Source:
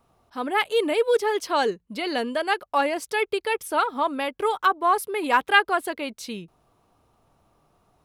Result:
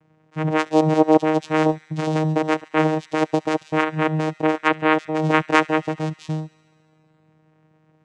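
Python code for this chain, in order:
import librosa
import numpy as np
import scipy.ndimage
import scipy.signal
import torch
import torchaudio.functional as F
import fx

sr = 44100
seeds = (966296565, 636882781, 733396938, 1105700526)

y = fx.vocoder(x, sr, bands=4, carrier='saw', carrier_hz=156.0)
y = fx.echo_wet_highpass(y, sr, ms=70, feedback_pct=79, hz=1800.0, wet_db=-20.5)
y = F.gain(torch.from_numpy(y), 4.5).numpy()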